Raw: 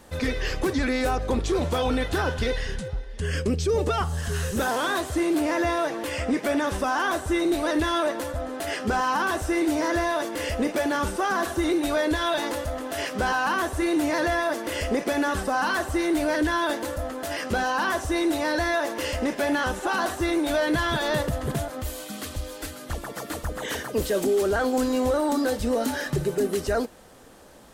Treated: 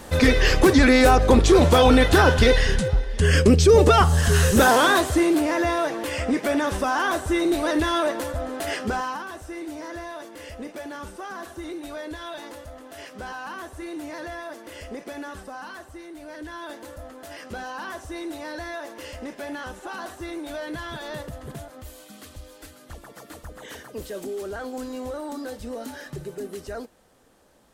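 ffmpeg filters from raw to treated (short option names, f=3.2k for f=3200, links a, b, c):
-af "volume=18dB,afade=t=out:st=4.66:d=0.8:silence=0.398107,afade=t=out:st=8.72:d=0.52:silence=0.237137,afade=t=out:st=15.19:d=0.95:silence=0.446684,afade=t=in:st=16.14:d=0.83:silence=0.375837"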